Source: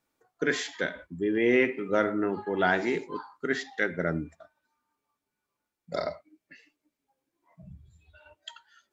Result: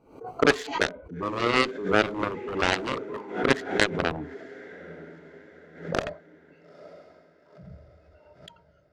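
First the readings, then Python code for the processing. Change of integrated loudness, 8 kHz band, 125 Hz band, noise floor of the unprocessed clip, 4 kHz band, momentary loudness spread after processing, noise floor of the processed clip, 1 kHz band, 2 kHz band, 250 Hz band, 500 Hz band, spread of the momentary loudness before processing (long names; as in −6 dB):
+2.5 dB, can't be measured, +3.5 dB, below −85 dBFS, +8.5 dB, 20 LU, −60 dBFS, +5.5 dB, +2.5 dB, 0.0 dB, +1.0 dB, 16 LU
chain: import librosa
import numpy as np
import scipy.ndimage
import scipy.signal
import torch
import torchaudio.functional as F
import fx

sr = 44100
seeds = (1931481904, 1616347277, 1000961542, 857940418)

p1 = fx.wiener(x, sr, points=25)
p2 = fx.rider(p1, sr, range_db=5, speed_s=0.5)
p3 = p1 + (p2 * librosa.db_to_amplitude(2.0))
p4 = fx.peak_eq(p3, sr, hz=440.0, db=7.0, octaves=0.32)
p5 = p4 + fx.echo_diffused(p4, sr, ms=910, feedback_pct=43, wet_db=-16.0, dry=0)
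p6 = fx.cheby_harmonics(p5, sr, harmonics=(7,), levels_db=(-12,), full_scale_db=-1.5)
p7 = fx.pre_swell(p6, sr, db_per_s=110.0)
y = p7 * librosa.db_to_amplitude(-4.5)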